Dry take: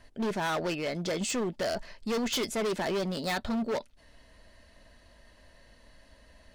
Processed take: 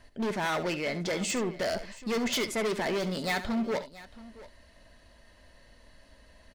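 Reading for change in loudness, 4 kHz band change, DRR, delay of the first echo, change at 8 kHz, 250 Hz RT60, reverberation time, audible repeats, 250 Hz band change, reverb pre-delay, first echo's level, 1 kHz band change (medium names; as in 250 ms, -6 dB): +0.5 dB, +0.5 dB, no reverb, 70 ms, +0.5 dB, no reverb, no reverb, 2, +0.5 dB, no reverb, -12.5 dB, +0.5 dB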